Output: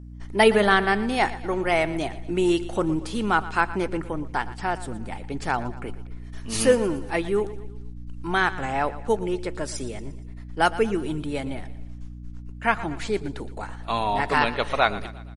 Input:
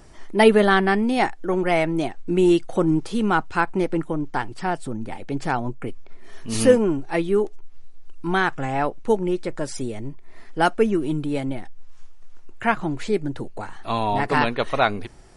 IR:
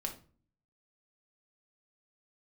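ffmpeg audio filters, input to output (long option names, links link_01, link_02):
-filter_complex "[0:a]agate=range=-23dB:threshold=-32dB:ratio=16:detection=peak,lowshelf=frequency=470:gain=-8,aeval=exprs='val(0)+0.01*(sin(2*PI*60*n/s)+sin(2*PI*2*60*n/s)/2+sin(2*PI*3*60*n/s)/3+sin(2*PI*4*60*n/s)/4+sin(2*PI*5*60*n/s)/5)':channel_layout=same,aecho=1:1:117|234|351|468:0.158|0.0777|0.0381|0.0186,asplit=2[link_01][link_02];[1:a]atrim=start_sample=2205[link_03];[link_02][link_03]afir=irnorm=-1:irlink=0,volume=-19dB[link_04];[link_01][link_04]amix=inputs=2:normalize=0"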